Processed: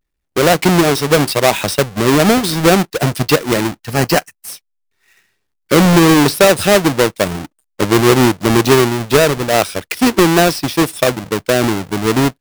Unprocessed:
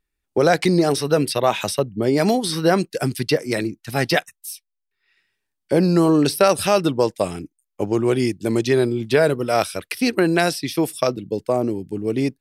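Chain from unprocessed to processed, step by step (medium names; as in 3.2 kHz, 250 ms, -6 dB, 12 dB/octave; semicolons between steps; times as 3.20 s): square wave that keeps the level; 3.93–4.48 s: band-stop 3.6 kHz, Q 5.1; level rider gain up to 10 dB; trim -1 dB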